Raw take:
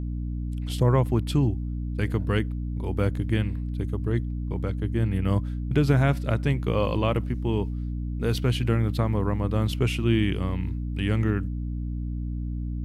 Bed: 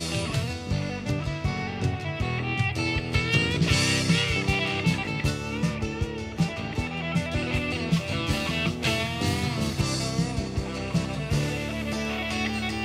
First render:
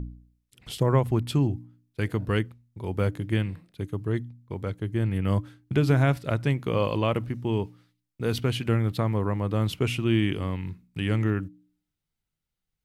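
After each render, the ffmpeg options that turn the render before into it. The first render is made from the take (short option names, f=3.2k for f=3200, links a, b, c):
-af "bandreject=f=60:t=h:w=4,bandreject=f=120:t=h:w=4,bandreject=f=180:t=h:w=4,bandreject=f=240:t=h:w=4,bandreject=f=300:t=h:w=4"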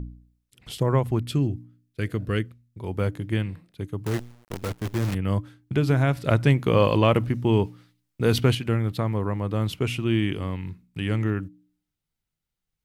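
-filter_complex "[0:a]asettb=1/sr,asplit=3[a][b][c];[a]atrim=end=1.204[d];[b]atrim=start=1.2:end=2.79,asetpts=PTS-STARTPTS,afade=t=in:d=0.004:c=qsin,afade=t=out:st=1.586:d=0.004:c=qsin,equalizer=f=880:w=3.5:g=-12[e];[c]atrim=start=2.786[f];[d][e]acrossfade=d=0.004:c1=hsin:c2=qsin[g];[g][f]acrossfade=d=0.004:c1=qsin:c2=hsin,asettb=1/sr,asplit=3[h][i][j];[h]atrim=end=4.064[k];[i]atrim=start=4.06:end=5.15,asetpts=PTS-STARTPTS,afade=t=in:d=0.004:c=qsin,afade=t=out:st=1.086:d=0.004:c=qsin,acrusher=bits=6:dc=4:mix=0:aa=0.000001[l];[j]atrim=start=5.146[m];[k][l]acrossfade=d=0.004:c1=hsin:c2=qsin[n];[n][m]acrossfade=d=0.004:c1=qsin:c2=hsin,asettb=1/sr,asplit=3[o][p][q];[o]atrim=end=6.184[r];[p]atrim=start=6.18:end=8.55,asetpts=PTS-STARTPTS,afade=t=in:d=0.004:c=qsin,afade=t=out:st=2.366:d=0.004:c=qsin,acontrast=56[s];[q]atrim=start=8.546[t];[r][s]acrossfade=d=0.004:c1=hsin:c2=qsin[u];[u][t]acrossfade=d=0.004:c1=qsin:c2=hsin"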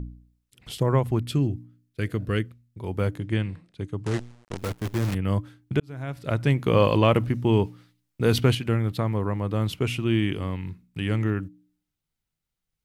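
-filter_complex "[0:a]asettb=1/sr,asplit=3[a][b][c];[a]atrim=end=3.184[d];[b]atrim=start=3.18:end=4.58,asetpts=PTS-STARTPTS,afade=t=in:d=0.004:c=qsin,afade=t=out:st=1.396:d=0.004:c=qsin,lowpass=f=9.2k:w=0.5412,lowpass=f=9.2k:w=1.3066[e];[c]atrim=start=4.576[f];[d][e]acrossfade=d=0.004:c1=hsin:c2=qsin[g];[g][f]acrossfade=d=0.004:c1=qsin:c2=hsin,asplit=2[h][i];[h]atrim=end=5.8,asetpts=PTS-STARTPTS,afade=t=out:st=5.796:d=0.004:c=hsin[j];[i]atrim=start=5.8,asetpts=PTS-STARTPTS,afade=t=in:d=0.95[k];[j][k]concat=n=2:v=0:a=1"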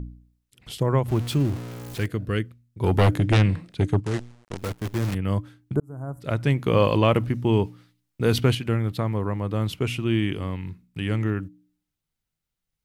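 -filter_complex "[0:a]asettb=1/sr,asplit=3[a][b][c];[a]atrim=end=1.084[d];[b]atrim=start=1.08:end=2.06,asetpts=PTS-STARTPTS,afade=t=in:d=0.004:c=qsin,afade=t=out:st=0.976:d=0.004:c=qsin,aeval=exprs='val(0)+0.5*0.0282*sgn(val(0))':c=same[e];[c]atrim=start=2.056[f];[d][e]acrossfade=d=0.004:c1=hsin:c2=qsin[g];[g][f]acrossfade=d=0.004:c1=qsin:c2=hsin,asplit=3[h][i][j];[h]afade=t=out:st=2.8:d=0.02[k];[i]aeval=exprs='0.224*sin(PI/2*2.51*val(0)/0.224)':c=same,afade=t=in:st=2.8:d=0.02,afade=t=out:st=3.99:d=0.02[l];[j]afade=t=in:st=3.99:d=0.02[m];[k][l][m]amix=inputs=3:normalize=0,asplit=3[n][o][p];[n]afade=t=out:st=5.74:d=0.02[q];[o]asuperstop=centerf=3200:order=8:qfactor=0.51,afade=t=in:st=5.74:d=0.02,afade=t=out:st=6.2:d=0.02[r];[p]afade=t=in:st=6.2:d=0.02[s];[q][r][s]amix=inputs=3:normalize=0"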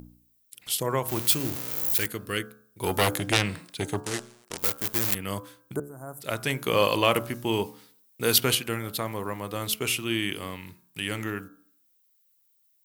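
-af "aemphasis=mode=production:type=riaa,bandreject=f=71.77:t=h:w=4,bandreject=f=143.54:t=h:w=4,bandreject=f=215.31:t=h:w=4,bandreject=f=287.08:t=h:w=4,bandreject=f=358.85:t=h:w=4,bandreject=f=430.62:t=h:w=4,bandreject=f=502.39:t=h:w=4,bandreject=f=574.16:t=h:w=4,bandreject=f=645.93:t=h:w=4,bandreject=f=717.7:t=h:w=4,bandreject=f=789.47:t=h:w=4,bandreject=f=861.24:t=h:w=4,bandreject=f=933.01:t=h:w=4,bandreject=f=1.00478k:t=h:w=4,bandreject=f=1.07655k:t=h:w=4,bandreject=f=1.14832k:t=h:w=4,bandreject=f=1.22009k:t=h:w=4,bandreject=f=1.29186k:t=h:w=4,bandreject=f=1.36363k:t=h:w=4,bandreject=f=1.4354k:t=h:w=4,bandreject=f=1.50717k:t=h:w=4,bandreject=f=1.57894k:t=h:w=4,bandreject=f=1.65071k:t=h:w=4"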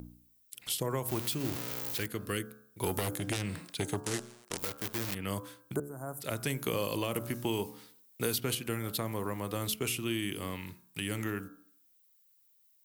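-filter_complex "[0:a]alimiter=limit=-11.5dB:level=0:latency=1:release=199,acrossover=split=420|5900[a][b][c];[a]acompressor=threshold=-32dB:ratio=4[d];[b]acompressor=threshold=-37dB:ratio=4[e];[c]acompressor=threshold=-35dB:ratio=4[f];[d][e][f]amix=inputs=3:normalize=0"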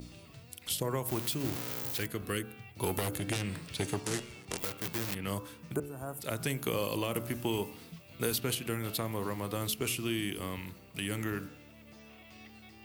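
-filter_complex "[1:a]volume=-25dB[a];[0:a][a]amix=inputs=2:normalize=0"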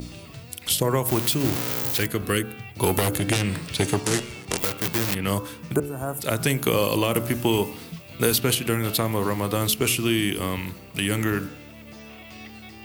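-af "volume=11dB"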